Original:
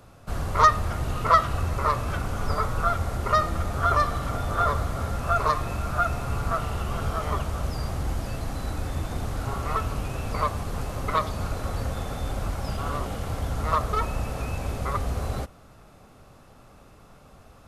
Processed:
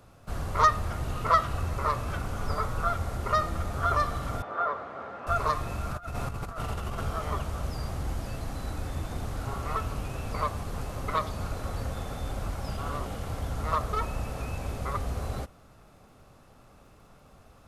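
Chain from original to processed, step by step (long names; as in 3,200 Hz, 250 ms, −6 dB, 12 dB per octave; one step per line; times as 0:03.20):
0:05.91–0:07.04: compressor whose output falls as the input rises −29 dBFS, ratio −0.5
surface crackle 38 per second −52 dBFS
0:04.42–0:05.27: band-pass filter 370–2,000 Hz
level −4 dB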